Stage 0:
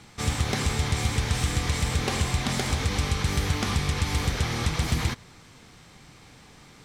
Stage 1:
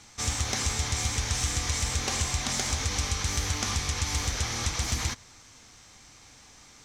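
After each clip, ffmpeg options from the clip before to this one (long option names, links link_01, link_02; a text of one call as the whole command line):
ffmpeg -i in.wav -af "equalizer=frequency=160:width_type=o:width=0.67:gain=-11,equalizer=frequency=400:width_type=o:width=0.67:gain=-5,equalizer=frequency=6300:width_type=o:width=0.67:gain=11,volume=-3dB" out.wav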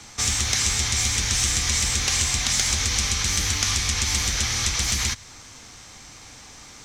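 ffmpeg -i in.wav -filter_complex "[0:a]acrossover=split=110|1500|4000[link_01][link_02][link_03][link_04];[link_01]asoftclip=type=hard:threshold=-35dB[link_05];[link_02]acompressor=threshold=-46dB:ratio=6[link_06];[link_05][link_06][link_03][link_04]amix=inputs=4:normalize=0,volume=8.5dB" out.wav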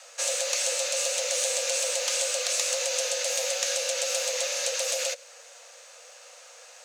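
ffmpeg -i in.wav -af "afreqshift=460,acrusher=bits=8:mode=log:mix=0:aa=0.000001,volume=-5dB" out.wav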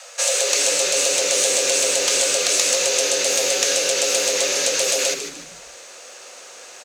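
ffmpeg -i in.wav -filter_complex "[0:a]asplit=5[link_01][link_02][link_03][link_04][link_05];[link_02]adelay=151,afreqshift=-120,volume=-9dB[link_06];[link_03]adelay=302,afreqshift=-240,volume=-18.1dB[link_07];[link_04]adelay=453,afreqshift=-360,volume=-27.2dB[link_08];[link_05]adelay=604,afreqshift=-480,volume=-36.4dB[link_09];[link_01][link_06][link_07][link_08][link_09]amix=inputs=5:normalize=0,volume=8dB" out.wav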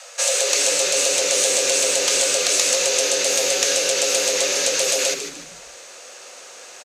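ffmpeg -i in.wav -af "aresample=32000,aresample=44100" out.wav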